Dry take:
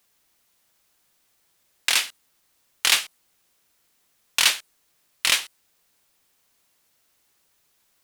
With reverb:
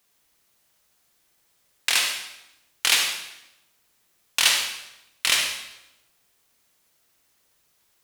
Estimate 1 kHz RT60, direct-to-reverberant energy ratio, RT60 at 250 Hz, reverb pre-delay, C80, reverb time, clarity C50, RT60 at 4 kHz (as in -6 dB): 0.90 s, 2.0 dB, 1.1 s, 40 ms, 6.5 dB, 0.90 s, 3.0 dB, 0.80 s